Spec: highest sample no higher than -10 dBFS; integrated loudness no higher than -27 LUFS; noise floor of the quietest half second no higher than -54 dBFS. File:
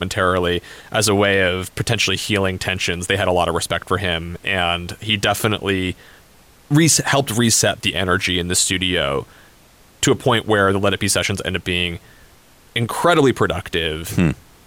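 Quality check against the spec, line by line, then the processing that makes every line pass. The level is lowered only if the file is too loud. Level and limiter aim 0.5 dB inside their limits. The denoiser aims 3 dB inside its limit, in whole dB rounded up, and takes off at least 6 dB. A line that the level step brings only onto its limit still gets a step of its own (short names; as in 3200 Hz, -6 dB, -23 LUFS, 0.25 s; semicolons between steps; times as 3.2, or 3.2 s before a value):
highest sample -4.5 dBFS: fail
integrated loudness -18.0 LUFS: fail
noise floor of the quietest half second -49 dBFS: fail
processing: gain -9.5 dB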